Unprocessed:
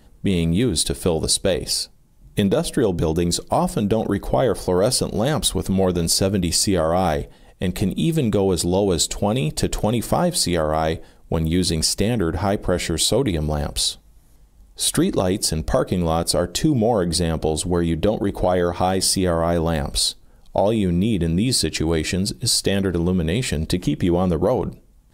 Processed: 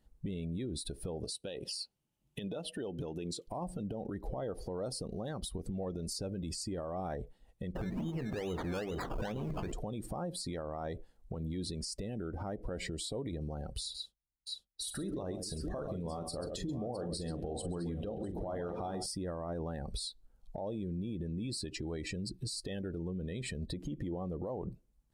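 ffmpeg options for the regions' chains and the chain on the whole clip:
-filter_complex "[0:a]asettb=1/sr,asplit=3[s0][s1][s2];[s0]atrim=end=1.244[s3];[s1]atrim=start=1.24:end=3.48,asetpts=PTS-STARTPTS,afade=t=in:d=0.004:c=qsin,afade=t=out:st=2.236:d=0.004:c=qsin,highpass=f=200:p=1,equalizer=f=2900:t=o:w=0.4:g=9.5[s4];[s2]atrim=start=3.476[s5];[s3][s4]acrossfade=d=0.004:c1=hsin:c2=qsin[s6];[s6][s5]acrossfade=d=0.004:c1=qsin:c2=hsin,asettb=1/sr,asplit=3[s7][s8][s9];[s7]atrim=end=7.754[s10];[s8]atrim=start=7.75:end=9.72,asetpts=PTS-STARTPTS,afade=t=in:d=0.004:c=qsin,afade=t=out:st=1.966:d=0.004:c=qsin,aeval=exprs='val(0)+0.5*0.0841*sgn(val(0))':c=same,bandreject=f=50:t=h:w=6,bandreject=f=100:t=h:w=6,bandreject=f=150:t=h:w=6,bandreject=f=200:t=h:w=6,bandreject=f=250:t=h:w=6,bandreject=f=300:t=h:w=6,bandreject=f=350:t=h:w=6,bandreject=f=400:t=h:w=6,bandreject=f=450:t=h:w=6,acrusher=samples=18:mix=1:aa=0.000001:lfo=1:lforange=10.8:lforate=2.3[s11];[s9]atrim=start=9.716[s12];[s10][s11]acrossfade=d=0.004:c1=hsin:c2=qsin[s13];[s13][s12]acrossfade=d=0.004:c1=qsin:c2=hsin,asettb=1/sr,asplit=3[s14][s15][s16];[s14]atrim=end=13.814[s17];[s15]atrim=start=13.81:end=19.06,asetpts=PTS-STARTPTS,afade=t=in:d=0.004:c=qsin,afade=t=out:st=5.246:d=0.004:c=qsin,agate=range=0.0562:threshold=0.0112:ratio=16:release=100:detection=peak,asplit=2[s18][s19];[s19]adelay=41,volume=0.335[s20];[s18][s20]amix=inputs=2:normalize=0,atrim=end_sample=231525,aecho=1:1:133|656:0.299|0.282,atrim=end_sample=231525[s21];[s16]atrim=start=19.056[s22];[s17][s21]acrossfade=d=0.004:c1=hsin:c2=qsin[s23];[s23][s22]acrossfade=d=0.004:c1=qsin:c2=hsin,afftdn=nr=17:nf=-28,acompressor=threshold=0.0501:ratio=6,alimiter=level_in=1.26:limit=0.0631:level=0:latency=1:release=95,volume=0.794,volume=0.596"

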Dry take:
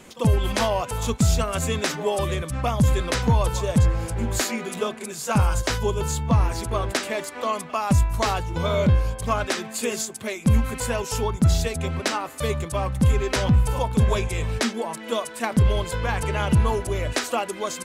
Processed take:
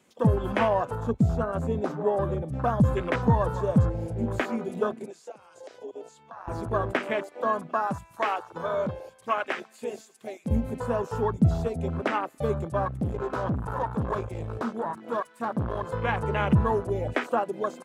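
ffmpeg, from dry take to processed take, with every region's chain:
-filter_complex "[0:a]asettb=1/sr,asplit=3[s0][s1][s2];[s0]atrim=end=0.954[s3];[s1]atrim=start=0.95:end=2.53,asetpts=PTS-STARTPTS,afade=t=in:d=0.004:c=qsin,afade=t=out:st=1.576:d=0.004:c=qsin,asoftclip=type=hard:threshold=0.237,highshelf=f=2000:g=-10[s4];[s2]atrim=start=2.526[s5];[s3][s4]acrossfade=d=0.004:c1=hsin:c2=qsin[s6];[s6][s5]acrossfade=d=0.004:c1=qsin:c2=hsin,asettb=1/sr,asplit=3[s7][s8][s9];[s7]atrim=end=5.064[s10];[s8]atrim=start=5.06:end=6.48,asetpts=PTS-STARTPTS,afade=t=in:d=0.004:c=qsin,afade=t=out:st=1.416:d=0.004:c=qsin,highpass=330,lowpass=7300,acompressor=threshold=0.02:ratio=6:attack=3.2:release=140:knee=1:detection=peak[s11];[s9]atrim=start=6.476[s12];[s10][s11]acrossfade=d=0.004:c1=hsin:c2=qsin[s13];[s13][s12]acrossfade=d=0.004:c1=qsin:c2=hsin,asettb=1/sr,asplit=3[s14][s15][s16];[s14]atrim=end=7.874[s17];[s15]atrim=start=7.87:end=10.51,asetpts=PTS-STARTPTS,afade=t=in:d=0.004:c=qsin,afade=t=out:st=2.636:d=0.004:c=qsin,highpass=f=700:p=1,aecho=1:1:111|222|333|444:0.075|0.0435|0.0252|0.0146,atrim=end_sample=116424[s18];[s16]atrim=start=10.506[s19];[s17][s18]acrossfade=d=0.004:c1=hsin:c2=qsin[s20];[s20][s19]acrossfade=d=0.004:c1=qsin:c2=hsin,asettb=1/sr,asplit=3[s21][s22][s23];[s21]atrim=end=12.854[s24];[s22]atrim=start=12.85:end=15.89,asetpts=PTS-STARTPTS,afade=t=in:d=0.004:c=qsin,afade=t=out:st=3.036:d=0.004:c=qsin,equalizer=f=1200:t=o:w=0.97:g=7.5,aeval=exprs='(tanh(12.6*val(0)+0.65)-tanh(0.65))/12.6':c=same[s25];[s23]atrim=start=15.886[s26];[s24][s25]acrossfade=d=0.004:c1=hsin:c2=qsin[s27];[s27][s26]acrossfade=d=0.004:c1=qsin:c2=hsin,acrossover=split=3600[s28][s29];[s29]acompressor=threshold=0.0178:ratio=4:attack=1:release=60[s30];[s28][s30]amix=inputs=2:normalize=0,highpass=100,afwtdn=0.0355"

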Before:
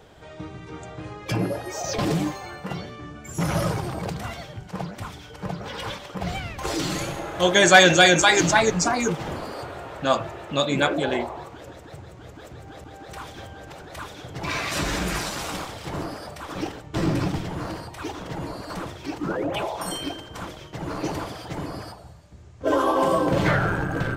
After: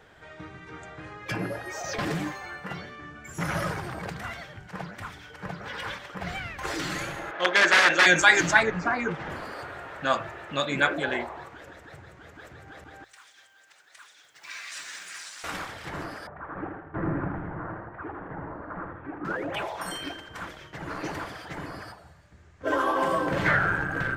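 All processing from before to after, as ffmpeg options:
-filter_complex "[0:a]asettb=1/sr,asplit=3[s0][s1][s2];[s0]atrim=end=7.314[s3];[s1]atrim=start=7.31:end=8.06,asetpts=PTS-STARTPTS,afade=t=in:d=0.004:c=qsin,afade=t=out:st=0.746:d=0.004:c=qsin,adynamicsmooth=sensitivity=7:basefreq=3500,aeval=exprs='(mod(2.66*val(0)+1,2)-1)/2.66':c=same,highpass=320,lowpass=4600[s4];[s2]atrim=start=8.056[s5];[s3][s4]acrossfade=d=0.004:c1=hsin:c2=qsin[s6];[s6][s5]acrossfade=d=0.004:c1=qsin:c2=hsin,asettb=1/sr,asplit=3[s7][s8][s9];[s7]atrim=end=8.634[s10];[s8]atrim=start=8.63:end=9.3,asetpts=PTS-STARTPTS,afade=t=in:d=0.004:c=qsin,afade=t=out:st=0.666:d=0.004:c=qsin,acrossover=split=3300[s11][s12];[s12]acompressor=threshold=0.01:ratio=4:attack=1:release=60[s13];[s11][s13]amix=inputs=2:normalize=0,aemphasis=mode=reproduction:type=50fm[s14];[s9]atrim=start=9.296[s15];[s10][s14]acrossfade=d=0.004:c1=hsin:c2=qsin[s16];[s16][s15]acrossfade=d=0.004:c1=qsin:c2=hsin,asettb=1/sr,asplit=3[s17][s18][s19];[s17]atrim=end=13.044[s20];[s18]atrim=start=13.04:end=15.44,asetpts=PTS-STARTPTS,afade=t=in:d=0.004:c=qsin,afade=t=out:st=2.396:d=0.004:c=qsin,lowpass=f=8800:w=0.5412,lowpass=f=8800:w=1.3066,acrusher=bits=9:mode=log:mix=0:aa=0.000001,aderivative[s21];[s19]atrim=start=15.436[s22];[s20][s21]acrossfade=d=0.004:c1=hsin:c2=qsin[s23];[s23][s22]acrossfade=d=0.004:c1=qsin:c2=hsin,asettb=1/sr,asplit=3[s24][s25][s26];[s24]atrim=end=16.274[s27];[s25]atrim=start=16.27:end=19.25,asetpts=PTS-STARTPTS,afade=t=in:d=0.004:c=qsin,afade=t=out:st=2.976:d=0.004:c=qsin,lowpass=f=1500:w=0.5412,lowpass=f=1500:w=1.3066,aecho=1:1:81|162|243|324|405|486:0.447|0.228|0.116|0.0593|0.0302|0.0154,atrim=end_sample=131418[s28];[s26]atrim=start=19.246[s29];[s27][s28]acrossfade=d=0.004:c1=hsin:c2=qsin[s30];[s30][s29]acrossfade=d=0.004:c1=qsin:c2=hsin,equalizer=f=1700:w=1.3:g=11,bandreject=f=58.28:t=h:w=4,bandreject=f=116.56:t=h:w=4,volume=0.447"

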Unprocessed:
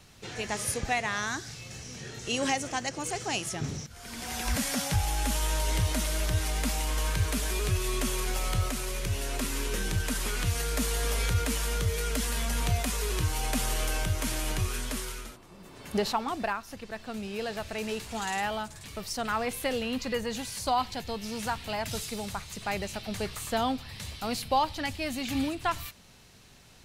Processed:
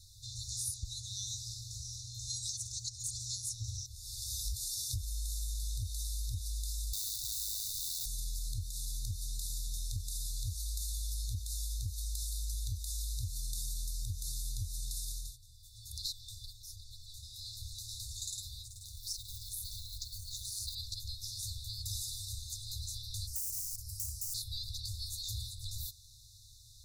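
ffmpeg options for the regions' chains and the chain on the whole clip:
-filter_complex "[0:a]asettb=1/sr,asplit=3[s0][s1][s2];[s0]atrim=end=6.934[s3];[s1]atrim=start=6.93:end=8.06,asetpts=PTS-STARTPTS,afade=t=in:d=0.004:c=qsin,afade=t=out:st=1.126:d=0.004:c=qsin,acontrast=65,aeval=exprs='(mod(10.6*val(0)+1,2)-1)/10.6':c=same,bass=f=250:g=-10,treble=f=4000:g=-3[s4];[s2]atrim=start=8.056[s5];[s3][s4]acrossfade=d=0.004:c1=hsin:c2=qsin[s6];[s6][s5]acrossfade=d=0.004:c1=qsin:c2=hsin,asettb=1/sr,asplit=3[s7][s8][s9];[s7]atrim=end=18.704[s10];[s8]atrim=start=18.7:end=20.75,asetpts=PTS-STARTPTS,afade=t=in:d=0.004:c=qsin,afade=t=out:st=2.046:d=0.004:c=qsin,tremolo=f=210:d=0.621,acrusher=bits=4:mode=log:mix=0:aa=0.000001[s11];[s9]atrim=start=20.746[s12];[s10][s11]acrossfade=d=0.004:c1=hsin:c2=qsin[s13];[s13][s12]acrossfade=d=0.004:c1=qsin:c2=hsin,asettb=1/sr,asplit=3[s14][s15][s16];[s14]atrim=end=23.274[s17];[s15]atrim=start=23.27:end=24.34,asetpts=PTS-STARTPTS,afade=t=in:d=0.004:c=qsin,afade=t=out:st=1.066:d=0.004:c=qsin,highshelf=f=4100:g=11,aeval=exprs='(mod(23.7*val(0)+1,2)-1)/23.7':c=same,asuperstop=centerf=2400:order=8:qfactor=0.52[s18];[s16]atrim=start=24.336[s19];[s17][s18]acrossfade=d=0.004:c1=hsin:c2=qsin[s20];[s20][s19]acrossfade=d=0.004:c1=qsin:c2=hsin,afftfilt=real='re*(1-between(b*sr/4096,120,3500))':imag='im*(1-between(b*sr/4096,120,3500))':win_size=4096:overlap=0.75,acompressor=threshold=0.0178:ratio=10,volume=1.12"

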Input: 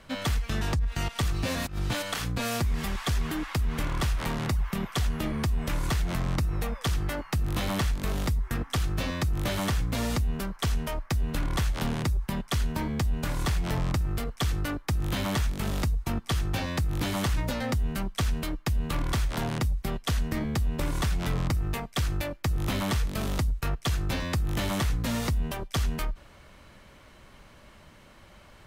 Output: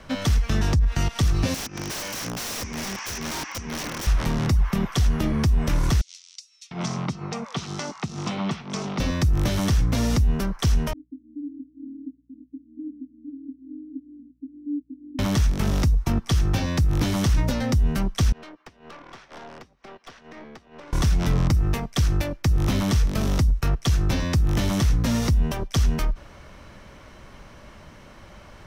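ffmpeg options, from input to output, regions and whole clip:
-filter_complex "[0:a]asettb=1/sr,asplit=3[s0][s1][s2];[s0]atrim=end=1.544[s3];[s1]atrim=start=1.54:end=4.07,asetpts=PTS-STARTPTS,afade=t=in:d=0.004:c=qsin,afade=t=out:st=2.526:d=0.004:c=qsin,highpass=190,equalizer=f=260:t=q:w=4:g=3,equalizer=f=640:t=q:w=4:g=-6,equalizer=f=1300:t=q:w=4:g=-5,equalizer=f=2400:t=q:w=4:g=4,equalizer=f=3800:t=q:w=4:g=-9,equalizer=f=5900:t=q:w=4:g=10,lowpass=f=7300:w=0.5412,lowpass=f=7300:w=1.3066,aeval=exprs='(mod(31.6*val(0)+1,2)-1)/31.6':c=same[s4];[s2]atrim=start=4.066[s5];[s3][s4]acrossfade=d=0.004:c1=hsin:c2=qsin[s6];[s6][s5]acrossfade=d=0.004:c1=qsin:c2=hsin,asettb=1/sr,asplit=3[s7][s8][s9];[s7]atrim=end=6.014[s10];[s8]atrim=start=6.01:end=9,asetpts=PTS-STARTPTS,afade=t=in:d=0.004:c=qsin,afade=t=out:st=2.986:d=0.004:c=qsin,highpass=f=160:w=0.5412,highpass=f=160:w=1.3066,equalizer=f=300:t=q:w=4:g=-9,equalizer=f=530:t=q:w=4:g=-7,equalizer=f=1700:t=q:w=4:g=-8,lowpass=f=7200:w=0.5412,lowpass=f=7200:w=1.3066,acrossover=split=3900[s11][s12];[s11]adelay=700[s13];[s13][s12]amix=inputs=2:normalize=0,atrim=end_sample=131859[s14];[s9]atrim=start=8.996[s15];[s10][s14]acrossfade=d=0.004:c1=hsin:c2=qsin[s16];[s16][s15]acrossfade=d=0.004:c1=qsin:c2=hsin,asettb=1/sr,asplit=3[s17][s18][s19];[s17]atrim=end=10.934[s20];[s18]atrim=start=10.93:end=15.19,asetpts=PTS-STARTPTS,afade=t=in:d=0.004:c=qsin,afade=t=out:st=4.256:d=0.004:c=qsin,asuperpass=centerf=280:order=8:qfactor=5.3,aeval=exprs='val(0)+0.000178*(sin(2*PI*60*n/s)+sin(2*PI*2*60*n/s)/2+sin(2*PI*3*60*n/s)/3+sin(2*PI*4*60*n/s)/4+sin(2*PI*5*60*n/s)/5)':c=same[s21];[s19]atrim=start=15.186[s22];[s20][s21]acrossfade=d=0.004:c1=hsin:c2=qsin[s23];[s23][s22]acrossfade=d=0.004:c1=qsin:c2=hsin,asettb=1/sr,asplit=3[s24][s25][s26];[s24]atrim=end=18.324[s27];[s25]atrim=start=18.32:end=20.93,asetpts=PTS-STARTPTS,afade=t=in:d=0.004:c=qsin,afade=t=out:st=2.606:d=0.004:c=qsin,acompressor=threshold=0.02:ratio=10:attack=3.2:release=140:knee=1:detection=peak,highpass=410,lowpass=3900,aeval=exprs='(tanh(141*val(0)+0.5)-tanh(0.5))/141':c=same[s28];[s26]atrim=start=20.926[s29];[s27][s28]acrossfade=d=0.004:c1=hsin:c2=qsin[s30];[s30][s29]acrossfade=d=0.004:c1=qsin:c2=hsin,equalizer=f=5700:t=o:w=0.32:g=8.5,acrossover=split=370|3000[s31][s32][s33];[s32]acompressor=threshold=0.0126:ratio=6[s34];[s31][s34][s33]amix=inputs=3:normalize=0,highshelf=f=3100:g=-8,volume=2.37"

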